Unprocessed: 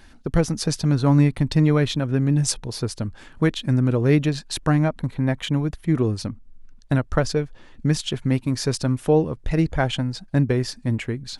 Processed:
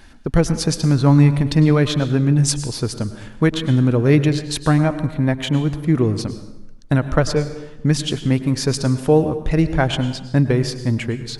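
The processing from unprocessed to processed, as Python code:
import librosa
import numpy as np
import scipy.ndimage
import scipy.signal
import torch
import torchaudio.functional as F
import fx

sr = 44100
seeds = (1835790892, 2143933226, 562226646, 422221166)

y = fx.rev_plate(x, sr, seeds[0], rt60_s=0.95, hf_ratio=0.75, predelay_ms=90, drr_db=11.0)
y = y * 10.0 ** (3.5 / 20.0)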